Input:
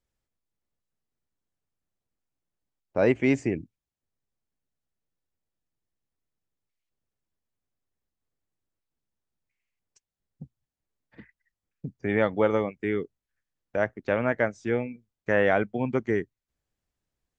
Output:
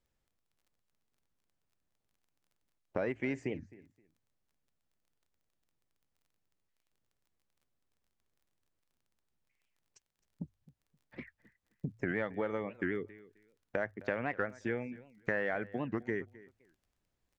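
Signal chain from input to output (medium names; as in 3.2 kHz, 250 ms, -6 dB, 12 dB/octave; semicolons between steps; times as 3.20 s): in parallel at -10.5 dB: overload inside the chain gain 15 dB; on the sum: treble shelf 5.9 kHz -6.5 dB; hum notches 50/100 Hz; compression 6:1, threshold -33 dBFS, peak gain reduction 17 dB; dynamic bell 1.8 kHz, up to +6 dB, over -56 dBFS, Q 2.2; on a send: feedback delay 262 ms, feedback 21%, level -20 dB; on the sum: crackle 25 per s -60 dBFS; warped record 78 rpm, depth 250 cents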